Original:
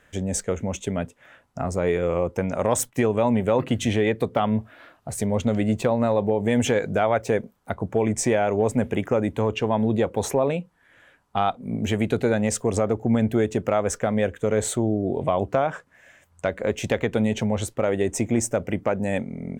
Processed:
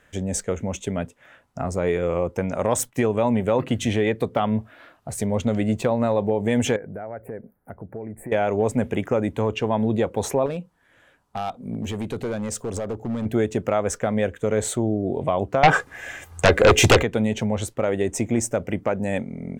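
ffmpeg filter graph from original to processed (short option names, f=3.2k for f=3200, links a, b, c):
-filter_complex "[0:a]asettb=1/sr,asplit=3[a][b][c];[a]atrim=end=6.764[d];[b]atrim=start=6.76:end=8.32,asetpts=PTS-STARTPTS,afade=t=in:d=0.004:c=qsin,afade=t=out:st=1.556:d=0.004:c=qsin,asuperstop=centerf=4700:order=8:qfactor=0.55,equalizer=f=1.1k:w=2.5:g=-11,acompressor=threshold=-39dB:ratio=2:attack=3.2:release=140:knee=1:detection=peak[e];[c]atrim=start=8.316[f];[d][e]acrossfade=d=0.004:c1=hsin:c2=qsin[g];[g][f]acrossfade=d=0.004:c1=qsin:c2=hsin,asettb=1/sr,asplit=3[h][i][j];[h]atrim=end=10.464[k];[i]atrim=start=10.46:end=13.26,asetpts=PTS-STARTPTS,afade=t=in:d=0.004:c=qsin,afade=t=out:st=2.796:d=0.004:c=qsin,equalizer=f=2k:t=o:w=1.1:g=-4,acompressor=threshold=-28dB:ratio=1.5:attack=3.2:release=140:knee=1:detection=peak,asoftclip=type=hard:threshold=-22.5dB[l];[j]atrim=start=13.256[m];[k][l]acrossfade=d=0.004:c1=hsin:c2=qsin[n];[n][m]acrossfade=d=0.004:c1=qsin:c2=hsin,asettb=1/sr,asplit=3[o][p][q];[o]atrim=end=15.634[r];[p]atrim=start=15.63:end=17.03,asetpts=PTS-STARTPTS,afade=t=in:d=0.004:c=qsin,afade=t=out:st=1.396:d=0.004:c=qsin,aecho=1:1:2.5:0.46,atrim=end_sample=61740,aeval=exprs='0.398*sin(PI/2*3.98*val(0)/0.398)':c=same[s];[q]atrim=start=17.026[t];[r][s]acrossfade=d=0.004:c1=hsin:c2=qsin[u];[u][t]acrossfade=d=0.004:c1=qsin:c2=hsin"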